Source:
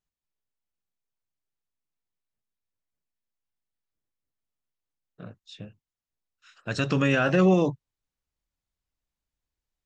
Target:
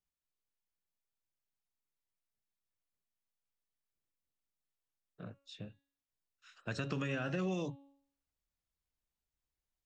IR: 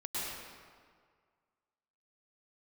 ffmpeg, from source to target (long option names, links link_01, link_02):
-filter_complex "[0:a]bandreject=frequency=278.4:width_type=h:width=4,bandreject=frequency=556.8:width_type=h:width=4,bandreject=frequency=835.2:width_type=h:width=4,bandreject=frequency=1113.6:width_type=h:width=4,bandreject=frequency=1392:width_type=h:width=4,bandreject=frequency=1670.4:width_type=h:width=4,bandreject=frequency=1948.8:width_type=h:width=4,bandreject=frequency=2227.2:width_type=h:width=4,bandreject=frequency=2505.6:width_type=h:width=4,bandreject=frequency=2784:width_type=h:width=4,bandreject=frequency=3062.4:width_type=h:width=4,bandreject=frequency=3340.8:width_type=h:width=4,bandreject=frequency=3619.2:width_type=h:width=4,bandreject=frequency=3897.6:width_type=h:width=4,bandreject=frequency=4176:width_type=h:width=4,bandreject=frequency=4454.4:width_type=h:width=4,acrossover=split=250|2100[link_01][link_02][link_03];[link_01]acompressor=threshold=-35dB:ratio=4[link_04];[link_02]acompressor=threshold=-35dB:ratio=4[link_05];[link_03]acompressor=threshold=-43dB:ratio=4[link_06];[link_04][link_05][link_06]amix=inputs=3:normalize=0,volume=-5dB"